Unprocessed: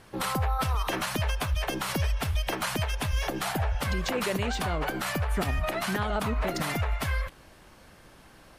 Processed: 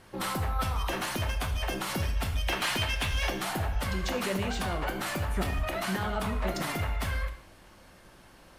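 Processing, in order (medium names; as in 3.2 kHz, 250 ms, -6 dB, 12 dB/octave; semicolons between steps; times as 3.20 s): 2.43–3.33 s: dynamic bell 2.9 kHz, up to +8 dB, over -47 dBFS, Q 0.71; saturation -19.5 dBFS, distortion -22 dB; gated-style reverb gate 210 ms falling, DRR 4.5 dB; trim -2.5 dB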